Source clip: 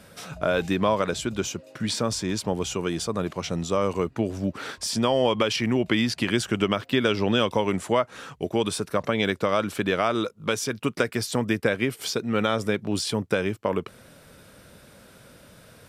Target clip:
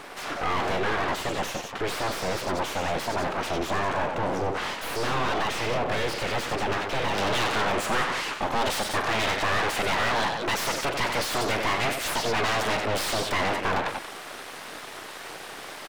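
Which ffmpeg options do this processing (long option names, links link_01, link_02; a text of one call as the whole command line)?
ffmpeg -i in.wav -filter_complex "[0:a]asoftclip=type=tanh:threshold=-21.5dB,aecho=1:1:43|93|182:0.211|0.299|0.224,aeval=exprs='abs(val(0))':channel_layout=same,asetnsamples=nb_out_samples=441:pad=0,asendcmd='7.18 lowpass f 3200',asplit=2[link_01][link_02];[link_02]highpass=frequency=720:poles=1,volume=25dB,asoftclip=type=tanh:threshold=-17dB[link_03];[link_01][link_03]amix=inputs=2:normalize=0,lowpass=frequency=1400:poles=1,volume=-6dB" out.wav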